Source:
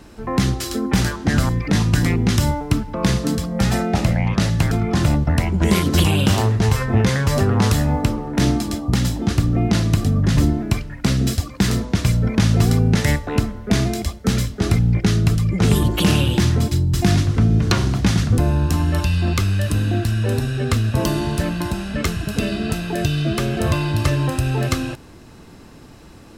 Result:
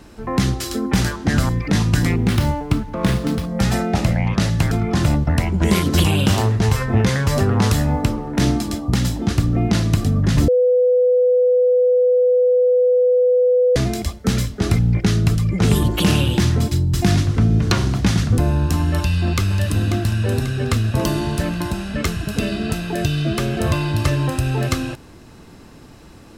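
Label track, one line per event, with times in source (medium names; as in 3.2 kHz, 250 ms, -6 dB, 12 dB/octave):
2.180000	3.490000	sliding maximum over 5 samples
10.480000	13.760000	bleep 498 Hz -11.5 dBFS
18.960000	19.580000	echo throw 540 ms, feedback 55%, level -9 dB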